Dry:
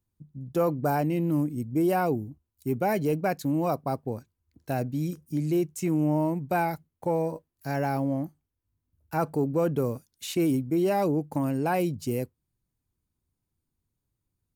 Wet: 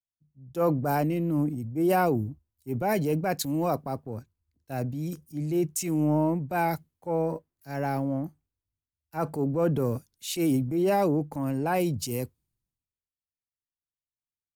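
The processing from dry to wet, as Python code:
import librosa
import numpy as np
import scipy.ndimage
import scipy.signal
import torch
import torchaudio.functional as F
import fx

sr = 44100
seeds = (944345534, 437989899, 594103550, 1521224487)

y = fx.transient(x, sr, attack_db=-4, sustain_db=6)
y = fx.band_widen(y, sr, depth_pct=70)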